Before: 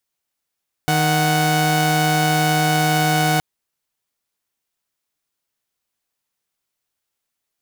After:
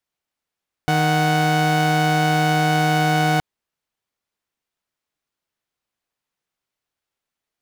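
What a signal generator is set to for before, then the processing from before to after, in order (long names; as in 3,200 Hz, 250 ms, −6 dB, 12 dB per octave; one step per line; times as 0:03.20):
held notes D#3/F#5 saw, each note −15.5 dBFS 2.52 s
high-shelf EQ 5,400 Hz −11 dB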